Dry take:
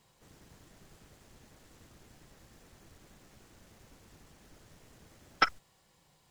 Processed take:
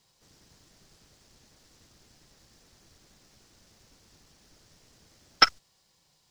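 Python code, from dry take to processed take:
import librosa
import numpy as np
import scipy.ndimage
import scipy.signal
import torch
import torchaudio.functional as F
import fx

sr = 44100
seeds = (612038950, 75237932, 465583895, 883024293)

y = fx.law_mismatch(x, sr, coded='A')
y = fx.peak_eq(y, sr, hz=5100.0, db=11.0, octaves=1.1)
y = y * librosa.db_to_amplitude(4.0)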